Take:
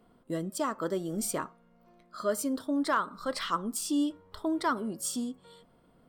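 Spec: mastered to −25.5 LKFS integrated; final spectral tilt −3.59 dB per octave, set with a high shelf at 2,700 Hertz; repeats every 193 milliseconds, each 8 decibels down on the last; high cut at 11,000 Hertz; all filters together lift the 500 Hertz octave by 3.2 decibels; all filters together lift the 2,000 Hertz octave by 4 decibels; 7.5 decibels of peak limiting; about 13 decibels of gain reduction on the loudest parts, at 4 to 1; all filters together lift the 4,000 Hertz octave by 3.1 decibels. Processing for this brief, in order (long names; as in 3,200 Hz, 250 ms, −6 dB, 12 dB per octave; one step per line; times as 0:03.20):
low-pass filter 11,000 Hz
parametric band 500 Hz +4 dB
parametric band 2,000 Hz +6.5 dB
high-shelf EQ 2,700 Hz −6.5 dB
parametric band 4,000 Hz +7.5 dB
downward compressor 4 to 1, threshold −37 dBFS
brickwall limiter −32 dBFS
repeating echo 193 ms, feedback 40%, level −8 dB
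level +15.5 dB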